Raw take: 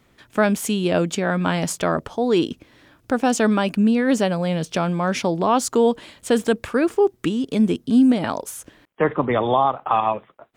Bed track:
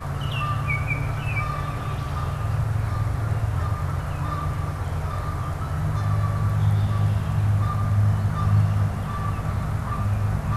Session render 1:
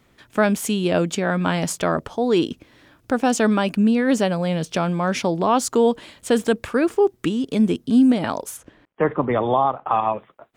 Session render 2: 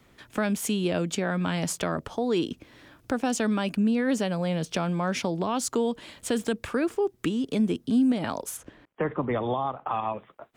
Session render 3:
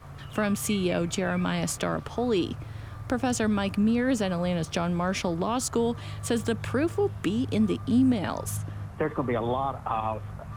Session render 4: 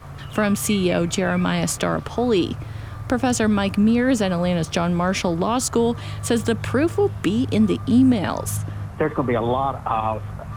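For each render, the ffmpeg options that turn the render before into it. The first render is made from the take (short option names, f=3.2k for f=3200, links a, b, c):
-filter_complex "[0:a]asplit=3[a][b][c];[a]afade=t=out:st=8.56:d=0.02[d];[b]lowpass=f=2k:p=1,afade=t=in:st=8.56:d=0.02,afade=t=out:st=10.16:d=0.02[e];[c]afade=t=in:st=10.16:d=0.02[f];[d][e][f]amix=inputs=3:normalize=0"
-filter_complex "[0:a]acrossover=split=270|1800|3700[a][b][c][d];[b]alimiter=limit=-15dB:level=0:latency=1:release=229[e];[a][e][c][d]amix=inputs=4:normalize=0,acompressor=threshold=-32dB:ratio=1.5"
-filter_complex "[1:a]volume=-15dB[a];[0:a][a]amix=inputs=2:normalize=0"
-af "volume=6.5dB"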